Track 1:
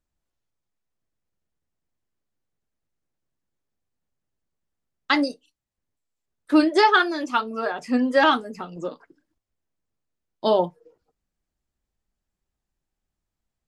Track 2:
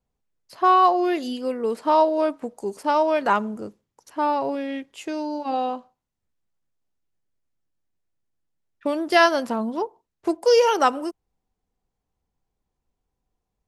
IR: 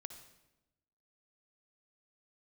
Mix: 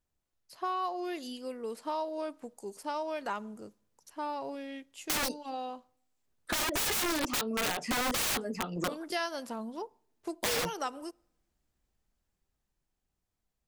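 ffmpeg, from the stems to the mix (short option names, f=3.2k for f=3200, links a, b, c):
-filter_complex "[0:a]asoftclip=type=hard:threshold=-10dB,dynaudnorm=f=320:g=11:m=6.5dB,aeval=exprs='(mod(6.68*val(0)+1,2)-1)/6.68':c=same,volume=-2.5dB[a];[1:a]highshelf=f=3.6k:g=10.5,volume=-13.5dB,asplit=2[b][c];[c]volume=-21dB[d];[2:a]atrim=start_sample=2205[e];[d][e]afir=irnorm=-1:irlink=0[f];[a][b][f]amix=inputs=3:normalize=0,acompressor=threshold=-32dB:ratio=2.5"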